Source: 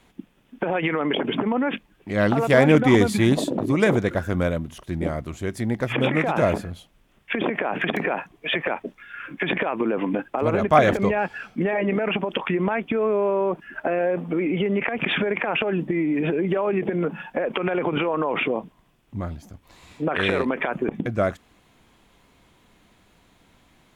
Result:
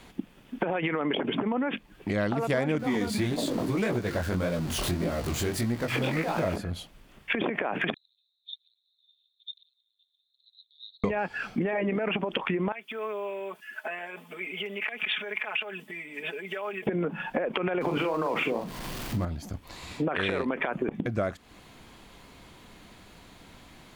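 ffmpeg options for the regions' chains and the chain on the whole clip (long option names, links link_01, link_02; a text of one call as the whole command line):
ffmpeg -i in.wav -filter_complex "[0:a]asettb=1/sr,asplit=3[link_01][link_02][link_03];[link_01]atrim=end=2.794[link_04];[link_02]atrim=start=2.79:end=6.56,asetpts=PTS-STARTPTS,afade=type=in:duration=0.004:curve=qsin,afade=type=out:start_time=3.766:duration=0.004:curve=qsin,aeval=exprs='val(0)+0.5*0.0422*sgn(val(0))':channel_layout=same,flanger=delay=16.5:depth=7.9:speed=1.7[link_05];[link_03]atrim=start=6.556[link_06];[link_04][link_05]acrossfade=duration=0.004:curve1=hsin:curve2=qsin[link_07];[link_07][link_06]acrossfade=duration=0.004:curve1=qsin:curve2=hsin,asettb=1/sr,asplit=3[link_08][link_09][link_10];[link_08]atrim=end=7.944[link_11];[link_09]atrim=start=7.94:end=11.04,asetpts=PTS-STARTPTS,afade=type=in:duration=0.004:curve=qsin,afade=type=out:start_time=3.096:duration=0.004:curve=qsin,acompressor=threshold=-23dB:ratio=6:attack=3.2:release=140:knee=1:detection=peak,asuperpass=centerf=3900:order=8:qfactor=7.1[link_12];[link_10]atrim=start=11.036[link_13];[link_11][link_12]acrossfade=duration=0.004:curve1=hsin:curve2=qsin[link_14];[link_14][link_13]acrossfade=duration=0.004:curve1=qsin:curve2=hsin,asettb=1/sr,asplit=3[link_15][link_16][link_17];[link_15]atrim=end=12.724[link_18];[link_16]atrim=start=12.72:end=16.87,asetpts=PTS-STARTPTS,afade=type=in:duration=0.004:curve=qsin,afade=type=out:start_time=4.146:duration=0.004:curve=qsin,aderivative,aecho=1:1:4.7:0.92,atrim=end_sample=183015[link_19];[link_17]atrim=start=16.866[link_20];[link_18][link_19]acrossfade=duration=0.004:curve1=hsin:curve2=qsin[link_21];[link_21][link_20]acrossfade=duration=0.004:curve1=qsin:curve2=hsin,asettb=1/sr,asplit=3[link_22][link_23][link_24];[link_22]atrim=end=17.814[link_25];[link_23]atrim=start=17.81:end=19.25,asetpts=PTS-STARTPTS,afade=type=in:duration=0.004:curve=qsin,afade=type=out:start_time=1.436:duration=0.004:curve=qsin,aeval=exprs='val(0)+0.5*0.0119*sgn(val(0))':channel_layout=same,asplit=2[link_26][link_27];[link_27]adelay=43,volume=-6.5dB[link_28];[link_26][link_28]amix=inputs=2:normalize=0,atrim=end_sample=63504[link_29];[link_24]atrim=start=19.246[link_30];[link_25][link_29]acrossfade=duration=0.004:curve1=hsin:curve2=qsin[link_31];[link_31][link_30]acrossfade=duration=0.004:curve1=qsin:curve2=hsin,acompressor=threshold=-34dB:ratio=4,equalizer=frequency=4500:width=5.1:gain=5,volume=6.5dB" out.wav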